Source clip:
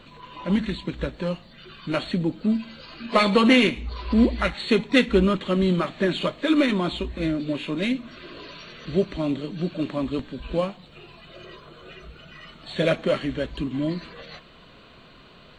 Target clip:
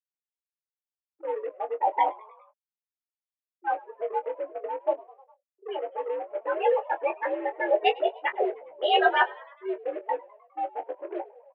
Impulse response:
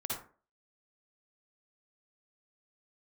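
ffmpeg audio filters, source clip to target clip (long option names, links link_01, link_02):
-filter_complex "[0:a]areverse,afwtdn=0.0398,afftfilt=real='re*gte(hypot(re,im),0.141)':imag='im*gte(hypot(re,im),0.141)':win_size=1024:overlap=0.75,flanger=delay=17:depth=3.1:speed=0.9,asplit=2[link_01][link_02];[link_02]acrusher=bits=4:mix=0:aa=0.5,volume=-11.5dB[link_03];[link_01][link_03]amix=inputs=2:normalize=0,asplit=2[link_04][link_05];[link_05]adelay=31,volume=-10dB[link_06];[link_04][link_06]amix=inputs=2:normalize=0,asplit=2[link_07][link_08];[link_08]asplit=4[link_09][link_10][link_11][link_12];[link_09]adelay=138,afreqshift=50,volume=-23dB[link_13];[link_10]adelay=276,afreqshift=100,volume=-27.3dB[link_14];[link_11]adelay=414,afreqshift=150,volume=-31.6dB[link_15];[link_12]adelay=552,afreqshift=200,volume=-35.9dB[link_16];[link_13][link_14][link_15][link_16]amix=inputs=4:normalize=0[link_17];[link_07][link_17]amix=inputs=2:normalize=0,highpass=frequency=300:width_type=q:width=0.5412,highpass=frequency=300:width_type=q:width=1.307,lowpass=frequency=2000:width_type=q:width=0.5176,lowpass=frequency=2000:width_type=q:width=0.7071,lowpass=frequency=2000:width_type=q:width=1.932,afreqshift=58,asetrate=59535,aresample=44100"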